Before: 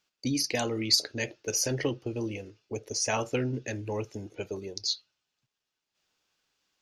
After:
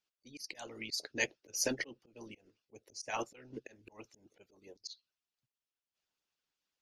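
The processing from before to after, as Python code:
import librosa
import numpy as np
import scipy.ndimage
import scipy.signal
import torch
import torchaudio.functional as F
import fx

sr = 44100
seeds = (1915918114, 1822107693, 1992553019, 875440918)

y = fx.hpss(x, sr, part='harmonic', gain_db=-18)
y = fx.auto_swell(y, sr, attack_ms=209.0)
y = fx.upward_expand(y, sr, threshold_db=-50.0, expansion=1.5)
y = y * librosa.db_to_amplitude(2.0)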